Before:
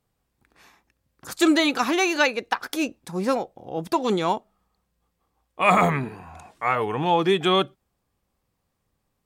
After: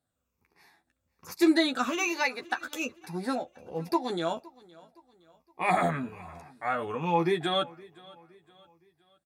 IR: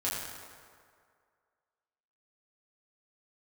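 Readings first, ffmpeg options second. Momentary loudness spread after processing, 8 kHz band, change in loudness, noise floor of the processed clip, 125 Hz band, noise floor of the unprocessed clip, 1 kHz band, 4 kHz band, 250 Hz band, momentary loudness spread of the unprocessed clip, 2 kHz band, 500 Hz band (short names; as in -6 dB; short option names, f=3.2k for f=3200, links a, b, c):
13 LU, -6.0 dB, -6.5 dB, -82 dBFS, -7.0 dB, -76 dBFS, -6.5 dB, -6.5 dB, -5.0 dB, 11 LU, -6.5 dB, -7.0 dB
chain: -filter_complex "[0:a]afftfilt=real='re*pow(10,11/40*sin(2*PI*(0.81*log(max(b,1)*sr/1024/100)/log(2)-(-1.2)*(pts-256)/sr)))':imag='im*pow(10,11/40*sin(2*PI*(0.81*log(max(b,1)*sr/1024/100)/log(2)-(-1.2)*(pts-256)/sr)))':win_size=1024:overlap=0.75,highpass=59,bandreject=f=3.1k:w=9.6,asplit=2[a][b];[b]adelay=12,volume=-5dB[c];[a][c]amix=inputs=2:normalize=0,aecho=1:1:516|1032|1548:0.0708|0.0304|0.0131,volume=-9dB"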